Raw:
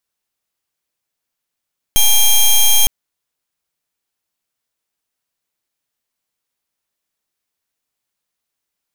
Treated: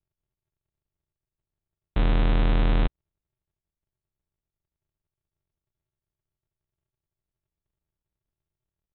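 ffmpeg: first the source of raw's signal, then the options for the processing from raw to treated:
-f lavfi -i "aevalsrc='0.335*(2*lt(mod(3210*t,1),0.11)-1)':d=0.91:s=44100"
-af "highpass=400,aresample=8000,acrusher=samples=32:mix=1:aa=0.000001,aresample=44100"

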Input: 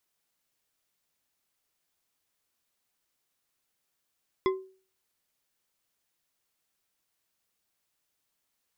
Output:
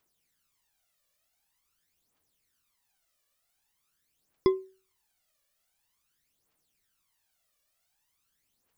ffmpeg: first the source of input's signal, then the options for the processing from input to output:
-f lavfi -i "aevalsrc='0.1*pow(10,-3*t/0.41)*sin(2*PI*379*t)+0.0531*pow(10,-3*t/0.202)*sin(2*PI*1044.9*t)+0.0282*pow(10,-3*t/0.126)*sin(2*PI*2048.1*t)+0.015*pow(10,-3*t/0.089)*sin(2*PI*3385.6*t)+0.00794*pow(10,-3*t/0.067)*sin(2*PI*5055.9*t)':d=0.89:s=44100"
-af "aphaser=in_gain=1:out_gain=1:delay=1.8:decay=0.67:speed=0.46:type=triangular"

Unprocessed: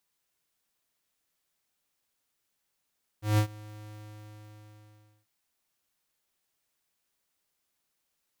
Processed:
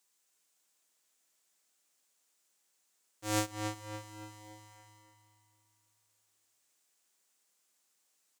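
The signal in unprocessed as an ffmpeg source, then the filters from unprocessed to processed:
-f lavfi -i "aevalsrc='0.0841*(2*lt(mod(106*t,1),0.5)-1)':d=2.04:s=44100,afade=t=in:d=0.161,afade=t=out:st=0.161:d=0.088:silence=0.0668,afade=t=out:st=0.67:d=1.37"
-filter_complex "[0:a]highpass=230,equalizer=f=7.4k:w=1.3:g=9.5,asplit=2[a][b];[b]adelay=284,lowpass=f=4.2k:p=1,volume=-5dB,asplit=2[c][d];[d]adelay=284,lowpass=f=4.2k:p=1,volume=0.49,asplit=2[e][f];[f]adelay=284,lowpass=f=4.2k:p=1,volume=0.49,asplit=2[g][h];[h]adelay=284,lowpass=f=4.2k:p=1,volume=0.49,asplit=2[i][j];[j]adelay=284,lowpass=f=4.2k:p=1,volume=0.49,asplit=2[k][l];[l]adelay=284,lowpass=f=4.2k:p=1,volume=0.49[m];[c][e][g][i][k][m]amix=inputs=6:normalize=0[n];[a][n]amix=inputs=2:normalize=0"

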